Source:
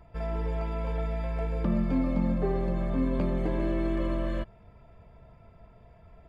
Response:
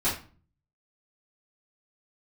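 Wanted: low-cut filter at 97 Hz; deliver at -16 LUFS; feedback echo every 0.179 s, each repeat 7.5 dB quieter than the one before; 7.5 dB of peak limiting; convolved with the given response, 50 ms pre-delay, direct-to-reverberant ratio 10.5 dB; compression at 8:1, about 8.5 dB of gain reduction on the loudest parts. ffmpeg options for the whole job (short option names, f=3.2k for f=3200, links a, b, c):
-filter_complex "[0:a]highpass=97,acompressor=threshold=-32dB:ratio=8,alimiter=level_in=7.5dB:limit=-24dB:level=0:latency=1,volume=-7.5dB,aecho=1:1:179|358|537|716|895:0.422|0.177|0.0744|0.0312|0.0131,asplit=2[a][b];[1:a]atrim=start_sample=2205,adelay=50[c];[b][c]afir=irnorm=-1:irlink=0,volume=-21dB[d];[a][d]amix=inputs=2:normalize=0,volume=21.5dB"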